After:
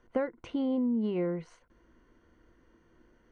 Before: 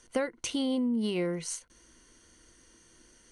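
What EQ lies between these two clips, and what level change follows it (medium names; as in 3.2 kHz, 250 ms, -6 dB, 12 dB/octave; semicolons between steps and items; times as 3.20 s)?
low-pass 1.4 kHz 12 dB/octave; 0.0 dB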